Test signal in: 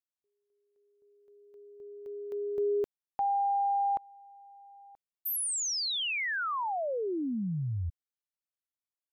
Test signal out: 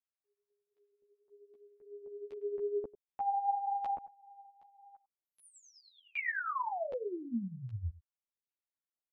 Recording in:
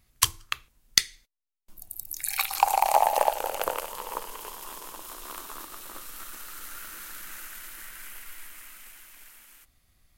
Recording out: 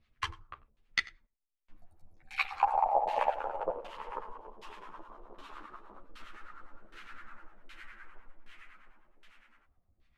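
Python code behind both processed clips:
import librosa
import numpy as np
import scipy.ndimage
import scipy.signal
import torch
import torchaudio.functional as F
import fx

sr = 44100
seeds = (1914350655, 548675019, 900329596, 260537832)

y = x + 10.0 ** (-18.5 / 20.0) * np.pad(x, (int(94 * sr / 1000.0), 0))[:len(x)]
y = fx.filter_lfo_lowpass(y, sr, shape='saw_down', hz=1.3, low_hz=490.0, high_hz=3400.0, q=1.4)
y = fx.harmonic_tremolo(y, sr, hz=9.8, depth_pct=70, crossover_hz=810.0)
y = fx.ensemble(y, sr)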